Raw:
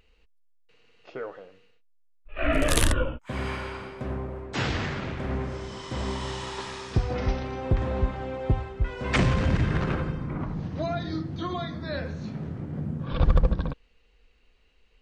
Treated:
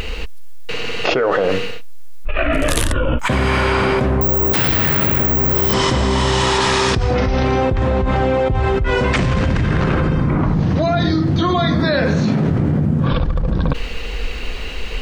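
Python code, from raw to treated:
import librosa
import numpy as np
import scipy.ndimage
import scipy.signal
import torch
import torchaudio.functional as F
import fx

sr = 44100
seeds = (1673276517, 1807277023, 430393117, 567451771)

y = fx.resample_bad(x, sr, factor=2, down='filtered', up='zero_stuff', at=(4.21, 5.73))
y = fx.highpass(y, sr, hz=130.0, slope=12, at=(11.8, 12.51))
y = fx.env_flatten(y, sr, amount_pct=100)
y = y * librosa.db_to_amplitude(-1.5)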